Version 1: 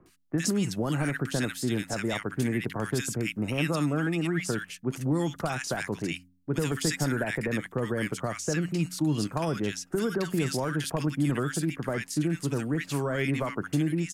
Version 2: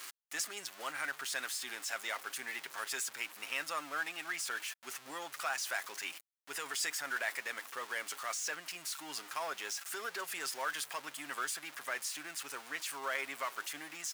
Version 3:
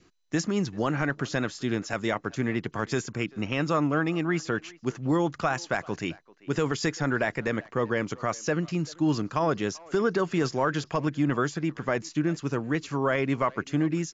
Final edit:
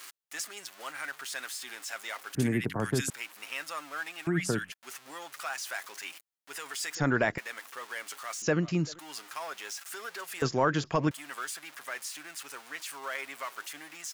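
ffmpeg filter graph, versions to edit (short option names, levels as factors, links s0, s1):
-filter_complex "[0:a]asplit=2[s0][s1];[2:a]asplit=3[s2][s3][s4];[1:a]asplit=6[s5][s6][s7][s8][s9][s10];[s5]atrim=end=2.352[s11];[s0]atrim=start=2.348:end=3.102[s12];[s6]atrim=start=3.098:end=4.272[s13];[s1]atrim=start=4.268:end=4.722[s14];[s7]atrim=start=4.718:end=6.952[s15];[s2]atrim=start=6.948:end=7.382[s16];[s8]atrim=start=7.378:end=8.422[s17];[s3]atrim=start=8.418:end=8.992[s18];[s9]atrim=start=8.988:end=10.422[s19];[s4]atrim=start=10.418:end=11.112[s20];[s10]atrim=start=11.108[s21];[s11][s12]acrossfade=d=0.004:c1=hsin:c2=hsin[s22];[s22][s13]acrossfade=d=0.004:c1=hsin:c2=hsin[s23];[s23][s14]acrossfade=d=0.004:c1=hsin:c2=hsin[s24];[s24][s15]acrossfade=d=0.004:c1=hsin:c2=hsin[s25];[s25][s16]acrossfade=d=0.004:c1=hsin:c2=hsin[s26];[s26][s17]acrossfade=d=0.004:c1=hsin:c2=hsin[s27];[s27][s18]acrossfade=d=0.004:c1=hsin:c2=hsin[s28];[s28][s19]acrossfade=d=0.004:c1=hsin:c2=hsin[s29];[s29][s20]acrossfade=d=0.004:c1=hsin:c2=hsin[s30];[s30][s21]acrossfade=d=0.004:c1=hsin:c2=hsin"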